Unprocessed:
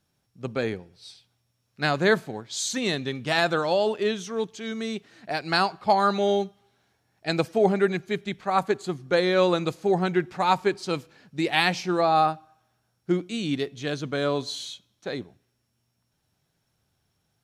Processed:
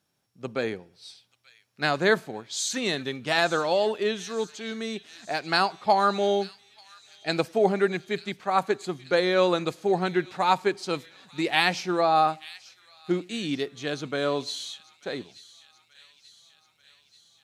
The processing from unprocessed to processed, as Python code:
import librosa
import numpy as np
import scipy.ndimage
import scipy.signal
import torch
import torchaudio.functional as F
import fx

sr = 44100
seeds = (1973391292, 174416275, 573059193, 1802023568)

y = fx.highpass(x, sr, hz=220.0, slope=6)
y = fx.echo_wet_highpass(y, sr, ms=885, feedback_pct=62, hz=2800.0, wet_db=-15)